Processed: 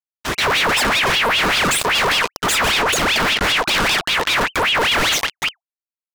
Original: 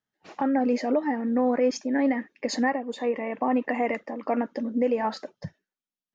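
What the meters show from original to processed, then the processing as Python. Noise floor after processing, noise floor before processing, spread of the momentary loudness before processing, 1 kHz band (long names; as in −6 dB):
below −85 dBFS, below −85 dBFS, 8 LU, +10.5 dB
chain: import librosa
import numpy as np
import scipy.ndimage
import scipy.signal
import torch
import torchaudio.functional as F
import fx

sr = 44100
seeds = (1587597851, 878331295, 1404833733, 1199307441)

y = fx.fuzz(x, sr, gain_db=51.0, gate_db=-50.0)
y = fx.transient(y, sr, attack_db=-1, sustain_db=7)
y = fx.ring_lfo(y, sr, carrier_hz=1900.0, swing_pct=65, hz=5.1)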